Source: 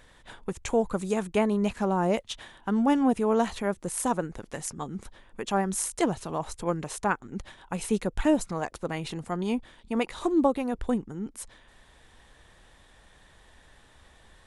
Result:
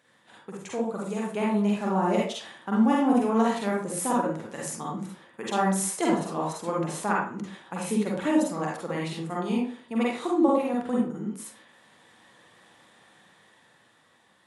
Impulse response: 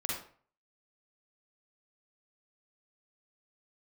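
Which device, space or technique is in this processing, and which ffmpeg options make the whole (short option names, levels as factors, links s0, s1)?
far laptop microphone: -filter_complex "[1:a]atrim=start_sample=2205[s0];[0:a][s0]afir=irnorm=-1:irlink=0,highpass=f=140:w=0.5412,highpass=f=140:w=1.3066,dynaudnorm=f=440:g=7:m=2.37,volume=0.398"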